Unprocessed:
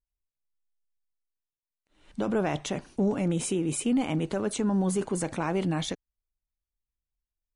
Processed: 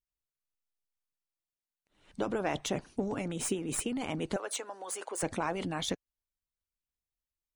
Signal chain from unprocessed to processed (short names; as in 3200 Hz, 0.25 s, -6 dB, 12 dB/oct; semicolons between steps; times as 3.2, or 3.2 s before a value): tracing distortion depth 0.021 ms; 4.36–5.23 HPF 470 Hz 24 dB/oct; harmonic-percussive split harmonic -11 dB